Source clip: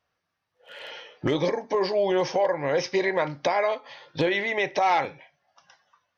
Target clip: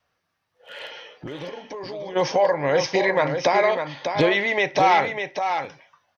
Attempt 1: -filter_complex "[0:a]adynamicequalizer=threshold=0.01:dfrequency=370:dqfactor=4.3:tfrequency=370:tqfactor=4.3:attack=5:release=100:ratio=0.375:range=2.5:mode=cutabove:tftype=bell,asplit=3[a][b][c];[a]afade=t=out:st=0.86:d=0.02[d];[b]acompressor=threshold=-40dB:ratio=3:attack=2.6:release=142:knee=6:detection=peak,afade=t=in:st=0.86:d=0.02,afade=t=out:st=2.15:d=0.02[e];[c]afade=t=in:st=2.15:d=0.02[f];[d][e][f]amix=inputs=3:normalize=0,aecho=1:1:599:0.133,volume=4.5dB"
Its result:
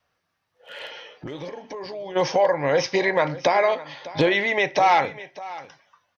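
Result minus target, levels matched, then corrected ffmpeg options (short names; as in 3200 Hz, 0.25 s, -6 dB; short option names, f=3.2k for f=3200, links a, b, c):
echo-to-direct -10.5 dB
-filter_complex "[0:a]adynamicequalizer=threshold=0.01:dfrequency=370:dqfactor=4.3:tfrequency=370:tqfactor=4.3:attack=5:release=100:ratio=0.375:range=2.5:mode=cutabove:tftype=bell,asplit=3[a][b][c];[a]afade=t=out:st=0.86:d=0.02[d];[b]acompressor=threshold=-40dB:ratio=3:attack=2.6:release=142:knee=6:detection=peak,afade=t=in:st=0.86:d=0.02,afade=t=out:st=2.15:d=0.02[e];[c]afade=t=in:st=2.15:d=0.02[f];[d][e][f]amix=inputs=3:normalize=0,aecho=1:1:599:0.447,volume=4.5dB"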